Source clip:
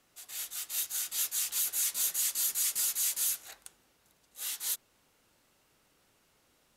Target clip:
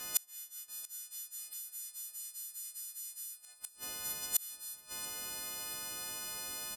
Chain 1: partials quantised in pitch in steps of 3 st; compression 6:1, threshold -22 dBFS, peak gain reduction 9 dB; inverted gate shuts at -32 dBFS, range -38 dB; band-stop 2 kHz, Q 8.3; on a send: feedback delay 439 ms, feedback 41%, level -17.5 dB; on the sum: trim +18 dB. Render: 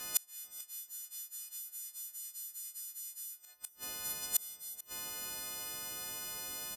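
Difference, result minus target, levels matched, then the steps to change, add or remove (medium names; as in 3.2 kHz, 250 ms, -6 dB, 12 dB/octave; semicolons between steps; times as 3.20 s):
echo 244 ms early
change: feedback delay 683 ms, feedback 41%, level -17.5 dB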